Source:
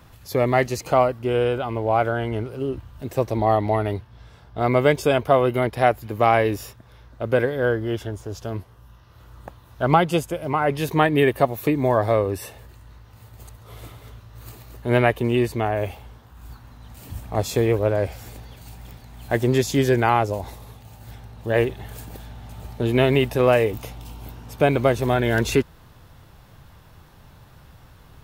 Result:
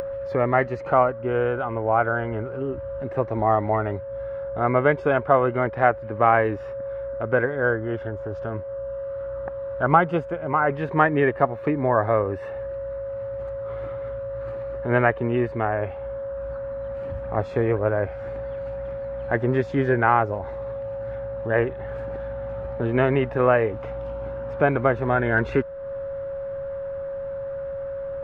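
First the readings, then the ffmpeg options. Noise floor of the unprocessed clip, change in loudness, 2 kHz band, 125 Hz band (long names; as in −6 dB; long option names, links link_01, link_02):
−50 dBFS, −3.0 dB, +1.5 dB, −3.0 dB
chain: -af "lowpass=frequency=1500:width_type=q:width=2.3,aeval=exprs='val(0)+0.0316*sin(2*PI*550*n/s)':channel_layout=same,acompressor=mode=upward:threshold=-22dB:ratio=2.5,volume=-3dB"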